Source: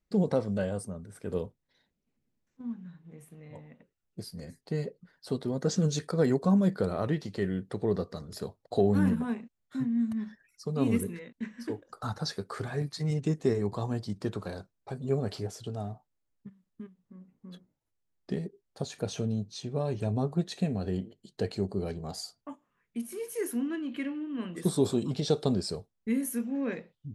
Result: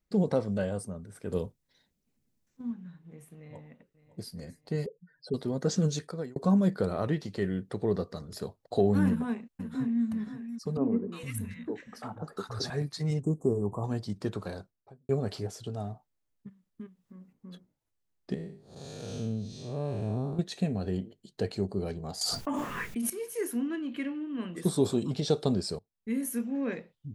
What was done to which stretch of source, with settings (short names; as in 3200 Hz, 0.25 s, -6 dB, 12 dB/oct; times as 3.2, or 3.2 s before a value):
1.32–2.71 tone controls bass +3 dB, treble +7 dB
3.38–4.34 echo throw 0.56 s, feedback 40%, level -15.5 dB
4.86–5.34 spectral contrast raised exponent 2.6
5.86–6.36 fade out
9.06–10.05 echo throw 0.53 s, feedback 50%, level -11 dB
10.77–12.7 three bands offset in time mids, highs, lows 0.35/0.46 s, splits 150/1200 Hz
13.22–13.84 elliptic band-stop 1100–7800 Hz
14.5–15.09 studio fade out
16.81–17.33 mismatched tape noise reduction encoder only
18.34–20.39 time blur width 0.2 s
22.21–23.1 fast leveller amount 100%
25.79–26.27 fade in, from -22.5 dB